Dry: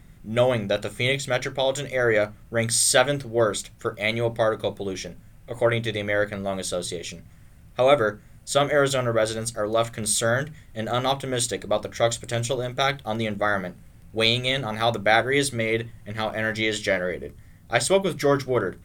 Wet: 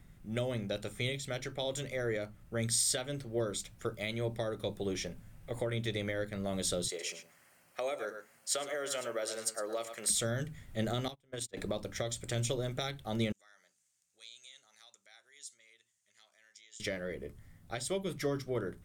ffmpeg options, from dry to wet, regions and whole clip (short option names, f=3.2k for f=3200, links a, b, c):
-filter_complex "[0:a]asettb=1/sr,asplit=3[a][b][c];[a]atrim=end=6.884[d];[b]atrim=start=6.88:end=10.1,asetpts=PTS-STARTPTS,afade=t=in:d=0.004:c=qsin,afade=t=out:st=3.216:d=0.004:c=qsin,highpass=530,bandreject=f=3.6k:w=6.7,aecho=1:1:107:0.251,atrim=end_sample=142002[e];[c]atrim=start=10.096[f];[d][e]acrossfade=d=0.004:c1=hsin:c2=qsin[g];[g][f]acrossfade=d=0.004:c1=qsin:c2=hsin,asettb=1/sr,asplit=3[h][i][j];[h]atrim=end=11.084[k];[i]atrim=start=11.08:end=11.57,asetpts=PTS-STARTPTS,afade=t=in:d=0.004:c=qsin,afade=t=out:st=0.486:d=0.004:c=qsin,agate=range=-34dB:threshold=-24dB:ratio=16:release=100:detection=peak,bandreject=f=870:w=9.8,acompressor=threshold=-31dB:ratio=16:attack=3.2:release=140:knee=1:detection=peak[l];[j]atrim=start=11.566[m];[k][l]acrossfade=d=0.004:c1=hsin:c2=qsin[n];[n][m]acrossfade=d=0.004:c1=qsin:c2=hsin,asettb=1/sr,asplit=3[o][p][q];[o]atrim=end=13.324[r];[p]atrim=start=13.32:end=16.8,asetpts=PTS-STARTPTS,afade=t=in:d=0.004:c=qsin,afade=t=out:st=3.476:d=0.004:c=qsin,acompressor=threshold=-33dB:ratio=2.5:attack=3.2:release=140:knee=1:detection=peak,bandpass=f=6.8k:t=q:w=3.5[s];[q]atrim=start=16.796[t];[r][s]acrossfade=d=0.004:c1=hsin:c2=qsin[u];[u][t]acrossfade=d=0.004:c1=qsin:c2=hsin,dynaudnorm=f=310:g=21:m=11.5dB,alimiter=limit=-11.5dB:level=0:latency=1:release=413,acrossover=split=430|3000[v][w][x];[w]acompressor=threshold=-32dB:ratio=6[y];[v][y][x]amix=inputs=3:normalize=0,volume=-8dB"